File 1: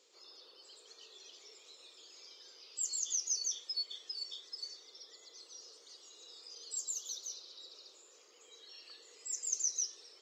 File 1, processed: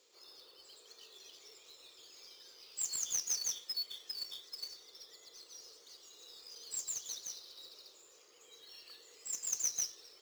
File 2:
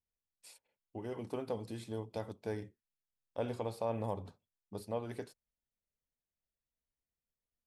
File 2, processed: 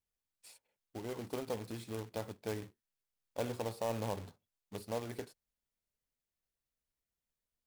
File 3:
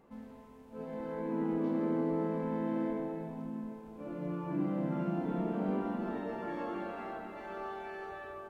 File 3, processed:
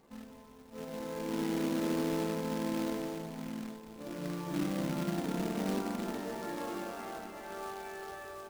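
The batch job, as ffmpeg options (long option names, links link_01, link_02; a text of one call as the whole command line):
ffmpeg -i in.wav -af "acrusher=bits=2:mode=log:mix=0:aa=0.000001,volume=-1dB" out.wav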